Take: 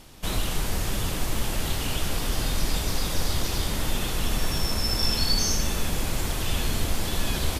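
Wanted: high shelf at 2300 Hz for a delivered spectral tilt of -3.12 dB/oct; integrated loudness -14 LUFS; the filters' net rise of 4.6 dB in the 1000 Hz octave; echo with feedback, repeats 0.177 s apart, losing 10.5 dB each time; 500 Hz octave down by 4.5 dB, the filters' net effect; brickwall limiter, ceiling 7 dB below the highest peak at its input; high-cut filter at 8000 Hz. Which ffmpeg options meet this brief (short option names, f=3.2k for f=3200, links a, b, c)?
-af "lowpass=8k,equalizer=f=500:t=o:g=-8.5,equalizer=f=1k:t=o:g=6.5,highshelf=f=2.3k:g=8,alimiter=limit=-14dB:level=0:latency=1,aecho=1:1:177|354|531:0.299|0.0896|0.0269,volume=10.5dB"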